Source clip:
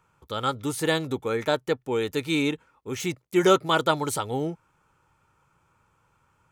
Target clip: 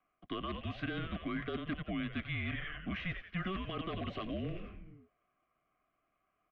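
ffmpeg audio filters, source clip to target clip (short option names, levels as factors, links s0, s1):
-filter_complex "[0:a]agate=range=0.0891:threshold=0.00158:ratio=16:detection=peak,lowshelf=f=180:g=-11,asplit=2[s0][s1];[s1]asplit=6[s2][s3][s4][s5][s6][s7];[s2]adelay=89,afreqshift=-130,volume=0.224[s8];[s3]adelay=178,afreqshift=-260,volume=0.12[s9];[s4]adelay=267,afreqshift=-390,volume=0.0653[s10];[s5]adelay=356,afreqshift=-520,volume=0.0351[s11];[s6]adelay=445,afreqshift=-650,volume=0.0191[s12];[s7]adelay=534,afreqshift=-780,volume=0.0102[s13];[s8][s9][s10][s11][s12][s13]amix=inputs=6:normalize=0[s14];[s0][s14]amix=inputs=2:normalize=0,alimiter=limit=0.158:level=0:latency=1:release=20,areverse,acompressor=threshold=0.0126:ratio=5,areverse,aeval=exprs='0.0266*(abs(mod(val(0)/0.0266+3,4)-2)-1)':c=same,highpass=f=170:t=q:w=0.5412,highpass=f=170:t=q:w=1.307,lowpass=f=3300:t=q:w=0.5176,lowpass=f=3300:t=q:w=0.7071,lowpass=f=3300:t=q:w=1.932,afreqshift=-190,acrossover=split=320|2100[s15][s16][s17];[s15]acompressor=threshold=0.00316:ratio=4[s18];[s16]acompressor=threshold=0.00251:ratio=4[s19];[s17]acompressor=threshold=0.00126:ratio=4[s20];[s18][s19][s20]amix=inputs=3:normalize=0,asuperstop=centerf=890:order=4:qfactor=2.8,volume=3.35"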